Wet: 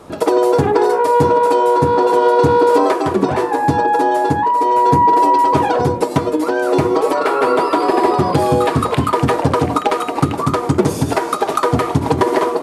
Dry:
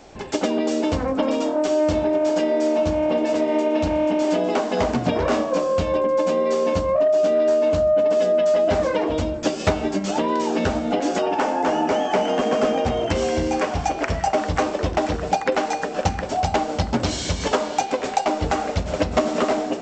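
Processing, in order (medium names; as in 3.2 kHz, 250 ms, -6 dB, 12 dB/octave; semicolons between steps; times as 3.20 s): peaking EQ 160 Hz +14 dB 2.7 oct; level rider; wide varispeed 1.57×; trim -1 dB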